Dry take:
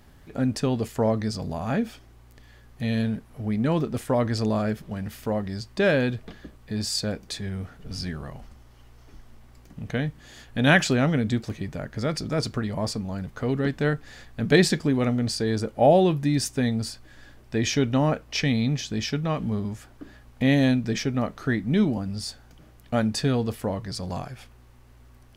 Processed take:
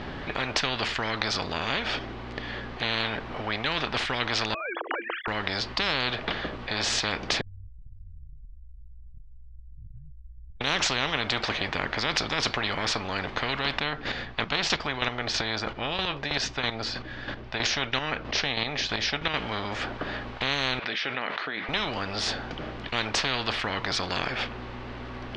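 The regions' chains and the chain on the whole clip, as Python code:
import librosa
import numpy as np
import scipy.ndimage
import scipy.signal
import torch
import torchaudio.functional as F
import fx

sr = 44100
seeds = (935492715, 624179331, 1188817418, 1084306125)

y = fx.chain(x, sr, fx.sine_speech(),
    fx.cheby_ripple_highpass(hz=330.0, ripple_db=6),
    fx.air_absorb(metres=190.0), at=(4.54, 5.28))
y = fx.chain(y, sr, fx.cheby2_bandstop(low_hz=250.0, high_hz=6600.0, order=4, stop_db=80),
    fx.band_squash(depth_pct=100), at=(7.41, 10.61))
y = fx.chain(y, sr, fx.steep_lowpass(hz=7800.0, slope=36),
    fx.chopper(hz=3.1, depth_pct=60, duty_pct=20), at=(13.73, 19.34))
y = fx.chain(y, sr, fx.bessel_highpass(hz=2900.0, order=2),
    fx.spacing_loss(db_at_10k=41),
    fx.env_flatten(amount_pct=70), at=(20.79, 21.69))
y = scipy.signal.sosfilt(scipy.signal.butter(4, 4000.0, 'lowpass', fs=sr, output='sos'), y)
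y = fx.spectral_comp(y, sr, ratio=10.0)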